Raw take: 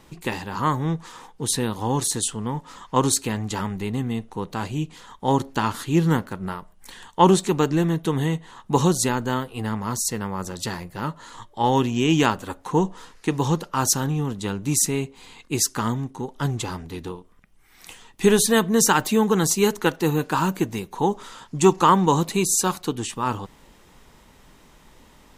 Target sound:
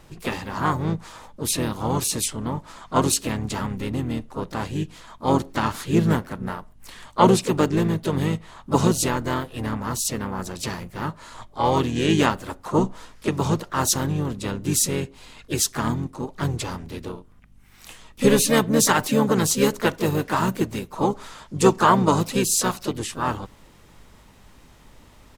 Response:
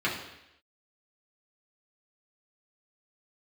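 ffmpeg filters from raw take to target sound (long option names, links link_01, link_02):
-filter_complex "[0:a]aeval=exprs='val(0)+0.002*(sin(2*PI*50*n/s)+sin(2*PI*2*50*n/s)/2+sin(2*PI*3*50*n/s)/3+sin(2*PI*4*50*n/s)/4+sin(2*PI*5*50*n/s)/5)':channel_layout=same,asplit=4[link_01][link_02][link_03][link_04];[link_02]asetrate=29433,aresample=44100,atempo=1.49831,volume=-8dB[link_05];[link_03]asetrate=52444,aresample=44100,atempo=0.840896,volume=-10dB[link_06];[link_04]asetrate=58866,aresample=44100,atempo=0.749154,volume=-10dB[link_07];[link_01][link_05][link_06][link_07]amix=inputs=4:normalize=0,volume=-1.5dB"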